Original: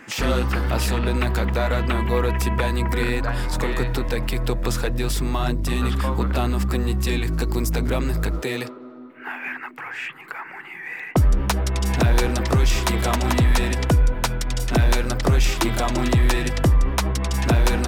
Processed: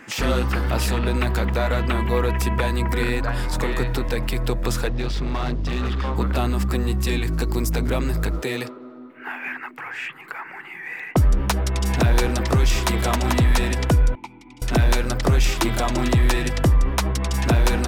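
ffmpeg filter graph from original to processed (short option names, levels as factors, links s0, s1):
-filter_complex "[0:a]asettb=1/sr,asplit=3[s0][s1][s2];[s0]atrim=end=4.884[s3];[s1]atrim=start=4.88:end=6.16,asetpts=PTS-STARTPTS,afade=t=in:d=0.004:c=qsin,afade=t=out:st=1.276:d=0.004:c=qsin,acrusher=bits=7:mix=0:aa=0.5,lowpass=f=5000:w=0.5412,lowpass=f=5000:w=1.3066,asoftclip=type=hard:threshold=0.1[s4];[s2]atrim=start=6.156[s5];[s3][s4]acrossfade=d=0.004:c1=hsin:c2=qsin[s6];[s6][s5]acrossfade=d=0.004:c1=qsin:c2=hsin,asettb=1/sr,asplit=3[s7][s8][s9];[s7]atrim=end=14.154[s10];[s8]atrim=start=14.15:end=14.62,asetpts=PTS-STARTPTS,afade=t=in:d=0.004:c=qsin,afade=t=out:st=0.466:d=0.004:c=qsin,asplit=3[s11][s12][s13];[s11]bandpass=f=300:t=q:w=8,volume=1[s14];[s12]bandpass=f=870:t=q:w=8,volume=0.501[s15];[s13]bandpass=f=2240:t=q:w=8,volume=0.355[s16];[s14][s15][s16]amix=inputs=3:normalize=0,highshelf=f=5600:g=9.5[s17];[s9]atrim=start=14.616[s18];[s10][s17]acrossfade=d=0.004:c1=hsin:c2=qsin[s19];[s19][s18]acrossfade=d=0.004:c1=qsin:c2=hsin"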